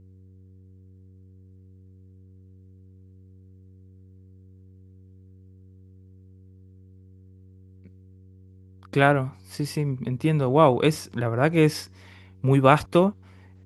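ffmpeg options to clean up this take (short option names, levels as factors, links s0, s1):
-af "bandreject=f=93.9:t=h:w=4,bandreject=f=187.8:t=h:w=4,bandreject=f=281.7:t=h:w=4,bandreject=f=375.6:t=h:w=4,bandreject=f=469.5:t=h:w=4"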